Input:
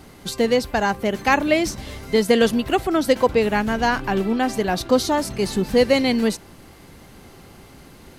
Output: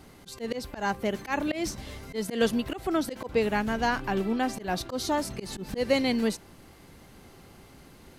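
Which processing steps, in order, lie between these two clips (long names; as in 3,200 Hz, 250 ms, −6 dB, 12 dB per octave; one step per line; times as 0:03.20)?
volume swells 129 ms
level −6.5 dB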